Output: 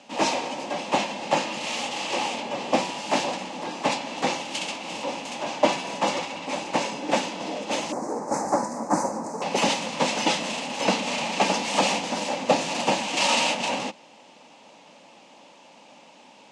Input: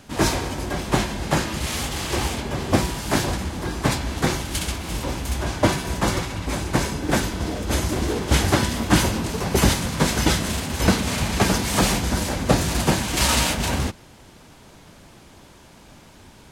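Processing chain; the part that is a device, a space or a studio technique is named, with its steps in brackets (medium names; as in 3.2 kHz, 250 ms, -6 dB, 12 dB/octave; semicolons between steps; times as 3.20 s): 7.92–9.42 s: Chebyshev band-stop 1.3–7 kHz, order 2; television speaker (cabinet simulation 220–7500 Hz, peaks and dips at 380 Hz -8 dB, 550 Hz +7 dB, 850 Hz +8 dB, 1.5 kHz -8 dB, 2.7 kHz +8 dB); trim -3 dB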